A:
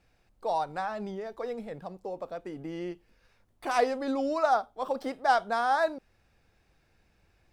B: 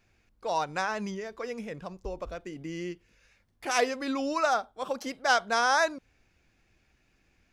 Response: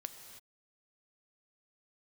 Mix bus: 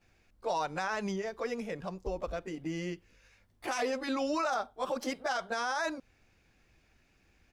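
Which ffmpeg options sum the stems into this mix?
-filter_complex "[0:a]volume=-7dB[link_01];[1:a]alimiter=limit=-15.5dB:level=0:latency=1:release=433,volume=-1,adelay=14,volume=0dB[link_02];[link_01][link_02]amix=inputs=2:normalize=0,alimiter=limit=-23.5dB:level=0:latency=1:release=13"

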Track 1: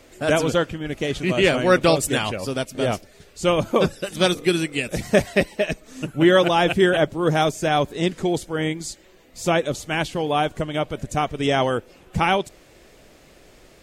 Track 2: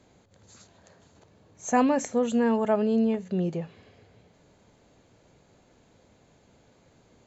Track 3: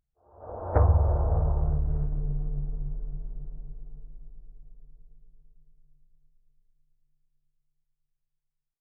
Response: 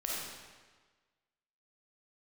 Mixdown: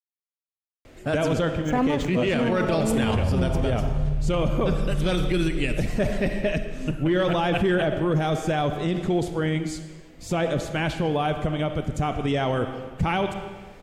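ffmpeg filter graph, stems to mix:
-filter_complex "[0:a]asoftclip=type=tanh:threshold=-7dB,adelay=850,volume=-2dB,asplit=2[link_01][link_02];[link_02]volume=-11.5dB[link_03];[1:a]aeval=exprs='sgn(val(0))*max(abs(val(0))-0.0126,0)':channel_layout=same,volume=0dB,asplit=2[link_04][link_05];[link_05]volume=-16dB[link_06];[2:a]aecho=1:1:7.5:0.65,acompressor=threshold=-30dB:ratio=2,adelay=2350,volume=1.5dB[link_07];[3:a]atrim=start_sample=2205[link_08];[link_03][link_06]amix=inputs=2:normalize=0[link_09];[link_09][link_08]afir=irnorm=-1:irlink=0[link_10];[link_01][link_04][link_07][link_10]amix=inputs=4:normalize=0,bass=frequency=250:gain=6,treble=frequency=4000:gain=-7,alimiter=limit=-14.5dB:level=0:latency=1:release=32"

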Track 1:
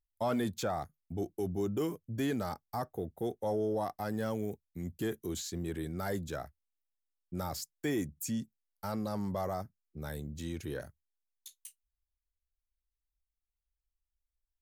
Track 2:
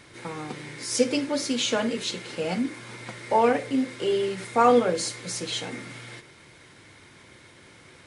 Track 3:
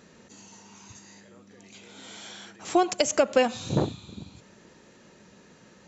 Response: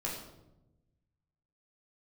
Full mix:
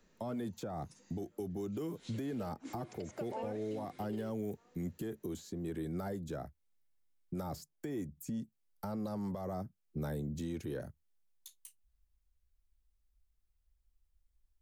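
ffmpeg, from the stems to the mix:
-filter_complex "[0:a]lowshelf=frequency=320:gain=11.5,volume=2.5dB[link_01];[1:a]volume=-11.5dB[link_02];[2:a]volume=-16dB,asplit=2[link_03][link_04];[link_04]apad=whole_len=355815[link_05];[link_02][link_05]sidechaingate=range=-40dB:threshold=-59dB:ratio=16:detection=peak[link_06];[link_01][link_06][link_03]amix=inputs=3:normalize=0,acrossover=split=140|410|1100[link_07][link_08][link_09][link_10];[link_07]acompressor=threshold=-52dB:ratio=4[link_11];[link_08]acompressor=threshold=-36dB:ratio=4[link_12];[link_09]acompressor=threshold=-38dB:ratio=4[link_13];[link_10]acompressor=threshold=-51dB:ratio=4[link_14];[link_11][link_12][link_13][link_14]amix=inputs=4:normalize=0,alimiter=level_in=6.5dB:limit=-24dB:level=0:latency=1:release=337,volume=-6.5dB"

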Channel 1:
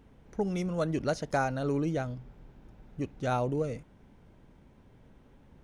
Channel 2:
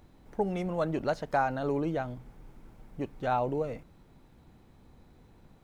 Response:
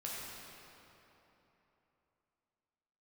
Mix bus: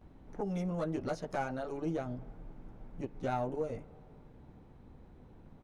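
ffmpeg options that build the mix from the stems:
-filter_complex "[0:a]aeval=exprs='(tanh(11.2*val(0)+0.5)-tanh(0.5))/11.2':channel_layout=same,volume=-7dB[link_01];[1:a]lowpass=frequency=1100:poles=1,acompressor=threshold=-36dB:ratio=6,volume=-1,adelay=14,volume=1dB,asplit=2[link_02][link_03];[link_03]volume=-18dB[link_04];[2:a]atrim=start_sample=2205[link_05];[link_04][link_05]afir=irnorm=-1:irlink=0[link_06];[link_01][link_02][link_06]amix=inputs=3:normalize=0"

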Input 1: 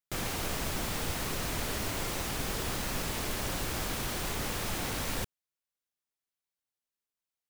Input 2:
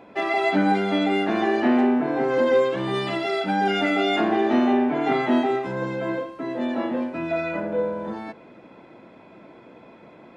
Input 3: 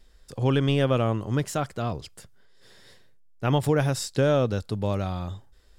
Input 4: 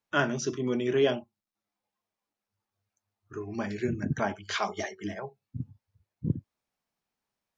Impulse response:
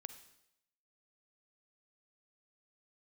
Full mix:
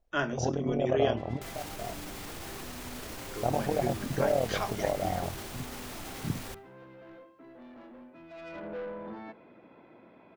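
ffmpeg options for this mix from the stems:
-filter_complex "[0:a]alimiter=level_in=6.5dB:limit=-24dB:level=0:latency=1:release=56,volume=-6.5dB,adelay=1300,volume=-3dB,asplit=2[link_01][link_02];[link_02]volume=-13dB[link_03];[1:a]lowpass=3400,asoftclip=type=tanh:threshold=-26.5dB,adelay=1000,volume=-8dB,afade=type=in:start_time=8.29:duration=0.42:silence=0.266073[link_04];[2:a]acompressor=threshold=-24dB:ratio=6,lowpass=frequency=710:width_type=q:width=5.2,tremolo=f=39:d=0.857,volume=-2.5dB[link_05];[3:a]volume=-5dB,asplit=3[link_06][link_07][link_08];[link_07]volume=-12.5dB[link_09];[link_08]apad=whole_len=255219[link_10];[link_05][link_10]sidechaingate=range=-12dB:threshold=-60dB:ratio=16:detection=peak[link_11];[4:a]atrim=start_sample=2205[link_12];[link_03][link_09]amix=inputs=2:normalize=0[link_13];[link_13][link_12]afir=irnorm=-1:irlink=0[link_14];[link_01][link_04][link_11][link_06][link_14]amix=inputs=5:normalize=0,bandreject=frequency=50:width_type=h:width=6,bandreject=frequency=100:width_type=h:width=6,bandreject=frequency=150:width_type=h:width=6,bandreject=frequency=200:width_type=h:width=6"

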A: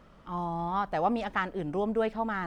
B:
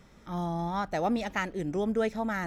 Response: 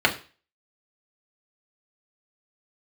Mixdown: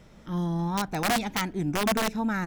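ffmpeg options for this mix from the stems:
-filter_complex "[0:a]lowshelf=frequency=170:gain=5,volume=-1.5dB[link_01];[1:a]highpass=68,adelay=0.5,volume=1.5dB[link_02];[link_01][link_02]amix=inputs=2:normalize=0,equalizer=frequency=1200:width_type=o:width=0.47:gain=-6.5,aeval=exprs='(mod(9.44*val(0)+1,2)-1)/9.44':channel_layout=same"

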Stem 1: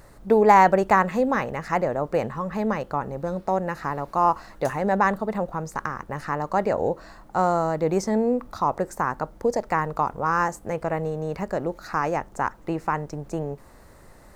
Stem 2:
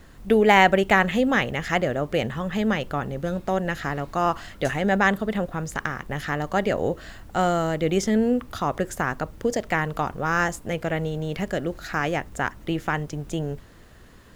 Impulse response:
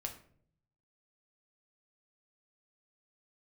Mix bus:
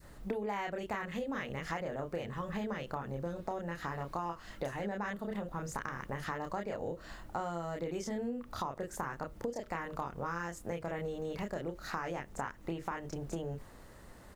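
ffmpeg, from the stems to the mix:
-filter_complex "[0:a]adynamicequalizer=threshold=0.0224:dfrequency=820:dqfactor=0.76:tfrequency=820:tqfactor=0.76:attack=5:release=100:ratio=0.375:range=2.5:mode=cutabove:tftype=bell,volume=-5.5dB[link_01];[1:a]equalizer=frequency=820:width_type=o:width=0.39:gain=-11.5,adelay=29,volume=-9.5dB[link_02];[link_01][link_02]amix=inputs=2:normalize=0,acompressor=threshold=-34dB:ratio=10"

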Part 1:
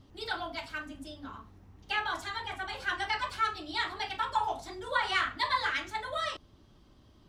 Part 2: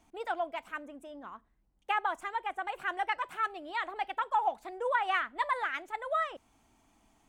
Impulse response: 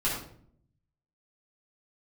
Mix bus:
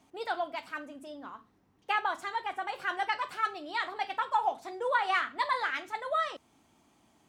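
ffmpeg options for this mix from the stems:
-filter_complex "[0:a]highpass=170,volume=-7.5dB[link_01];[1:a]volume=0.5dB[link_02];[link_01][link_02]amix=inputs=2:normalize=0,highpass=85"

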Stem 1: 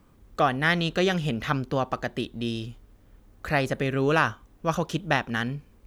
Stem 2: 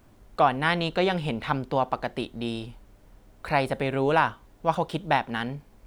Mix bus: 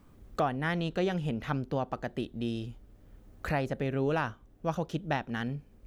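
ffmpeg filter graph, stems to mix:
ffmpeg -i stem1.wav -i stem2.wav -filter_complex "[0:a]volume=-2dB[link_01];[1:a]tiltshelf=frequency=770:gain=8.5,volume=-14dB,asplit=2[link_02][link_03];[link_03]apad=whole_len=258501[link_04];[link_01][link_04]sidechaincompress=threshold=-40dB:ratio=8:attack=16:release=1290[link_05];[link_05][link_02]amix=inputs=2:normalize=0" out.wav

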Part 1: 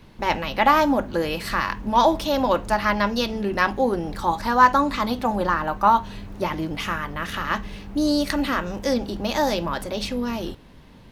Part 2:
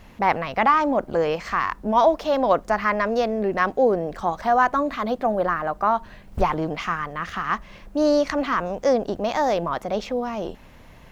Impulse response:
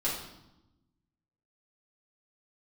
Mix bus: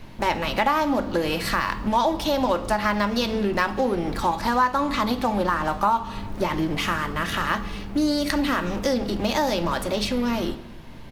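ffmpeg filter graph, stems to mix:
-filter_complex "[0:a]volume=2.5dB,asplit=2[link_01][link_02];[link_02]volume=-17.5dB[link_03];[1:a]aecho=1:1:1.3:0.39,acompressor=threshold=-20dB:ratio=6,aeval=exprs='0.0237*(abs(mod(val(0)/0.0237+3,4)-2)-1)':channel_layout=same,volume=-1,volume=-7.5dB,asplit=2[link_04][link_05];[link_05]volume=-5.5dB[link_06];[2:a]atrim=start_sample=2205[link_07];[link_03][link_06]amix=inputs=2:normalize=0[link_08];[link_08][link_07]afir=irnorm=-1:irlink=0[link_09];[link_01][link_04][link_09]amix=inputs=3:normalize=0,acompressor=threshold=-20dB:ratio=3"

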